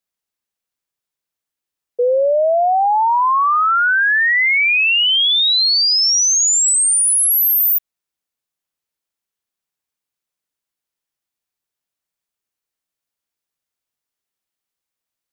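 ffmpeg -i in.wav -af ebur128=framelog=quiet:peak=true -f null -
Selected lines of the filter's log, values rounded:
Integrated loudness:
  I:         -12.4 LUFS
  Threshold: -22.4 LUFS
Loudness range:
  LRA:         7.6 LU
  Threshold: -33.5 LUFS
  LRA low:   -18.8 LUFS
  LRA high:  -11.2 LUFS
True peak:
  Peak:      -11.4 dBFS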